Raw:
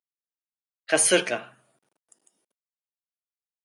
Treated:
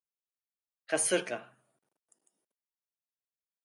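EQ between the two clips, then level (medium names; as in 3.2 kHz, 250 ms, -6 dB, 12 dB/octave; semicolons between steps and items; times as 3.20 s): peaking EQ 3.6 kHz -4.5 dB 2.2 oct; -7.5 dB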